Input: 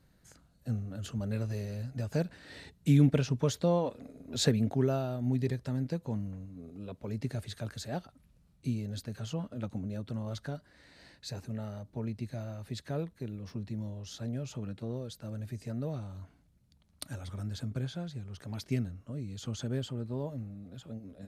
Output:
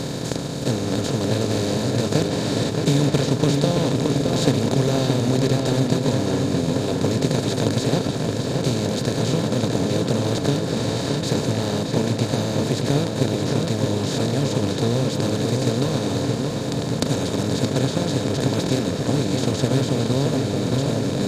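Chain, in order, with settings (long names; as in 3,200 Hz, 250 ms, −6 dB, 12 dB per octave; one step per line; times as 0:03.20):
compressor on every frequency bin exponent 0.2
transient designer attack +4 dB, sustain −5 dB
feedback echo with a low-pass in the loop 622 ms, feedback 64%, low-pass 4,100 Hz, level −4 dB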